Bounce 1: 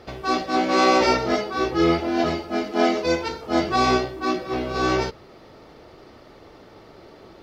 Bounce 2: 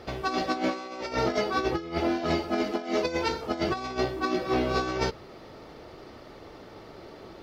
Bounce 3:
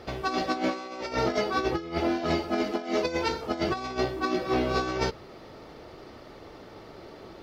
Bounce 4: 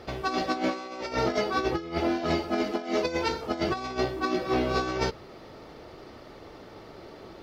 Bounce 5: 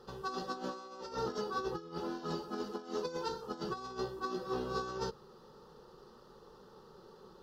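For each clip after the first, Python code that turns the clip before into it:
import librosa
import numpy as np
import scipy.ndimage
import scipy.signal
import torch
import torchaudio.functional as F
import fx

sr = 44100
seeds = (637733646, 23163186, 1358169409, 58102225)

y1 = fx.over_compress(x, sr, threshold_db=-24.0, ratio=-0.5)
y1 = y1 * 10.0 ** (-3.0 / 20.0)
y2 = y1
y3 = fx.attack_slew(y2, sr, db_per_s=470.0)
y4 = fx.fixed_phaser(y3, sr, hz=440.0, stages=8)
y4 = y4 * 10.0 ** (-7.5 / 20.0)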